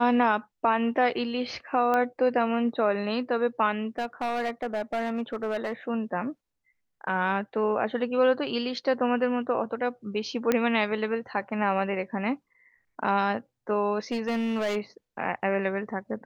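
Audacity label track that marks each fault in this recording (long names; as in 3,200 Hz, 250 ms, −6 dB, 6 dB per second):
1.940000	1.940000	click −15 dBFS
3.980000	5.730000	clipping −24.5 dBFS
10.520000	10.520000	click −10 dBFS
14.110000	14.770000	clipping −24 dBFS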